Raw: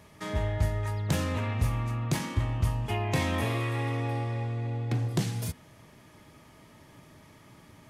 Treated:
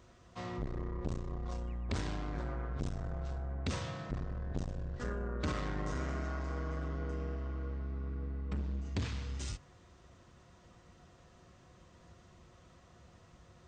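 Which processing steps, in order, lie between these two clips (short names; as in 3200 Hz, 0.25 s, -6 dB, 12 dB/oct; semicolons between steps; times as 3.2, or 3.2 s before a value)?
speed mistake 78 rpm record played at 45 rpm; core saturation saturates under 270 Hz; gain -5.5 dB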